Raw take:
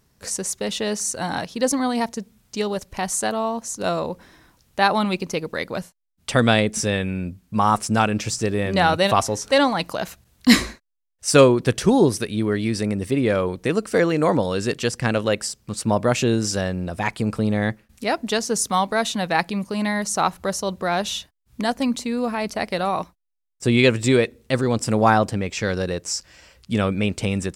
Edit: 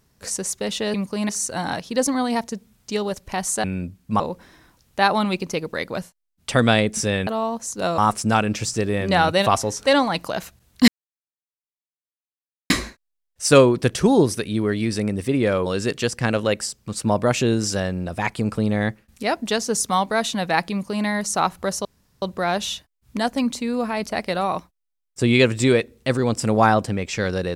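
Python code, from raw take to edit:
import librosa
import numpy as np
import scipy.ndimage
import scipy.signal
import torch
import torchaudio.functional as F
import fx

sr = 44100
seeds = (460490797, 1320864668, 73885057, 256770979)

y = fx.edit(x, sr, fx.swap(start_s=3.29, length_s=0.71, other_s=7.07, other_length_s=0.56),
    fx.insert_silence(at_s=10.53, length_s=1.82),
    fx.cut(start_s=13.49, length_s=0.98),
    fx.duplicate(start_s=19.52, length_s=0.35, to_s=0.94),
    fx.insert_room_tone(at_s=20.66, length_s=0.37), tone=tone)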